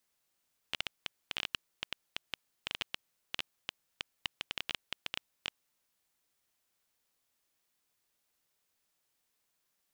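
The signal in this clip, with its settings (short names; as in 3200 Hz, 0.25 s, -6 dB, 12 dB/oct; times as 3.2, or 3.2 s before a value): random clicks 9/s -16 dBFS 4.88 s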